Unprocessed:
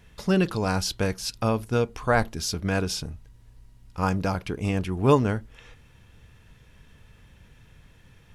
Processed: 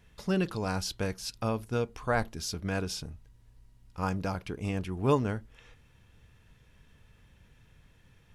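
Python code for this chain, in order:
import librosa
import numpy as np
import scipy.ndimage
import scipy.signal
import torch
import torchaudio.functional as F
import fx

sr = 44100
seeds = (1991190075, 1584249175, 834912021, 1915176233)

y = F.gain(torch.from_numpy(x), -6.5).numpy()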